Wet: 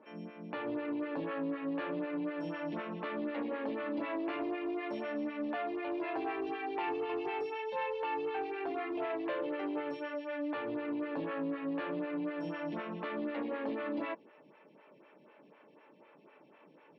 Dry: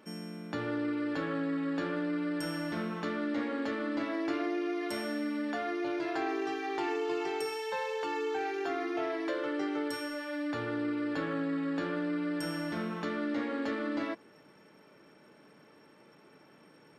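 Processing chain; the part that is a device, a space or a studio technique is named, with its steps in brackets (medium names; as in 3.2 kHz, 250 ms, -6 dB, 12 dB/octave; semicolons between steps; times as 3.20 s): vibe pedal into a guitar amplifier (lamp-driven phase shifter 4 Hz; valve stage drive 29 dB, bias 0.25; cabinet simulation 100–3700 Hz, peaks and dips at 100 Hz -10 dB, 580 Hz +4 dB, 970 Hz +5 dB, 1.4 kHz -3 dB, 2.6 kHz +7 dB)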